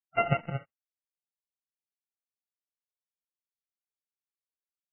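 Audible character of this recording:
a buzz of ramps at a fixed pitch in blocks of 64 samples
chopped level 2.3 Hz, depth 65%, duty 85%
a quantiser's noise floor 10 bits, dither none
MP3

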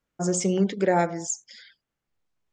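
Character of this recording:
background noise floor −85 dBFS
spectral slope −5.0 dB per octave

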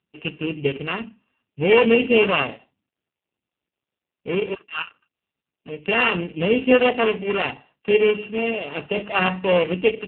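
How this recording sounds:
a buzz of ramps at a fixed pitch in blocks of 16 samples
AMR narrowband

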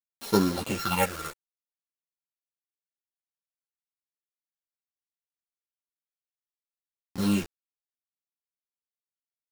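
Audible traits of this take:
a buzz of ramps at a fixed pitch in blocks of 32 samples
phaser sweep stages 6, 0.6 Hz, lowest notch 210–2,600 Hz
a quantiser's noise floor 6 bits, dither none
a shimmering, thickened sound

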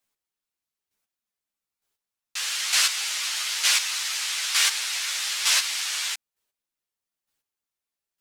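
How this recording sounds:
chopped level 1.1 Hz, depth 65%, duty 15%
a shimmering, thickened sound

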